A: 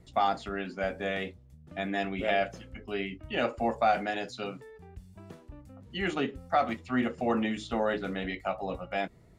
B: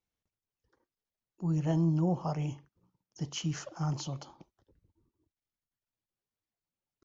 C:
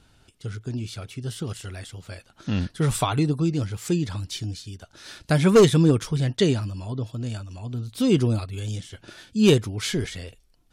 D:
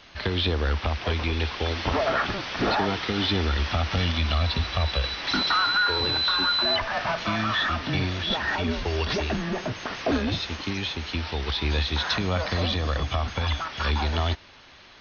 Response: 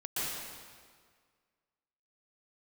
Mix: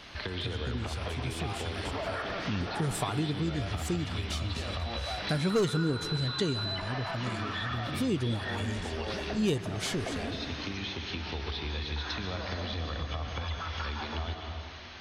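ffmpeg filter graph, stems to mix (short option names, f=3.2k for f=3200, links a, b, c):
-filter_complex "[0:a]alimiter=limit=-21.5dB:level=0:latency=1,adelay=1250,volume=-7dB[a];[2:a]volume=-2dB,asplit=2[b][c];[c]volume=-24dB[d];[3:a]acompressor=threshold=-41dB:ratio=2,volume=0dB,asplit=2[e][f];[f]volume=-7dB[g];[4:a]atrim=start_sample=2205[h];[d][g]amix=inputs=2:normalize=0[i];[i][h]afir=irnorm=-1:irlink=0[j];[a][b][e][j]amix=inputs=4:normalize=0,acompressor=threshold=-33dB:ratio=2"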